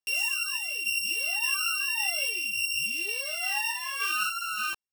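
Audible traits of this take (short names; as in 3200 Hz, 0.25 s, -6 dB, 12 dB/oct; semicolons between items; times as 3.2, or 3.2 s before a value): a buzz of ramps at a fixed pitch in blocks of 16 samples; random-step tremolo, depth 55%; a shimmering, thickened sound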